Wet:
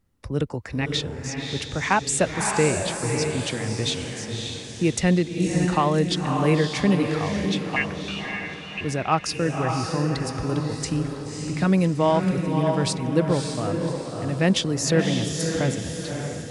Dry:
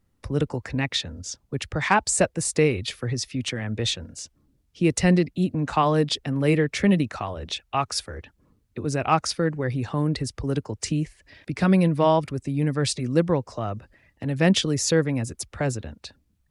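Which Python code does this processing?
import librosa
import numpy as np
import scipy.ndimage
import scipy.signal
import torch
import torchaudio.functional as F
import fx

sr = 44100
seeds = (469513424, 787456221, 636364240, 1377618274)

y = fx.freq_invert(x, sr, carrier_hz=2900, at=(7.76, 8.81))
y = fx.echo_diffused(y, sr, ms=578, feedback_pct=44, wet_db=-4)
y = F.gain(torch.from_numpy(y), -1.0).numpy()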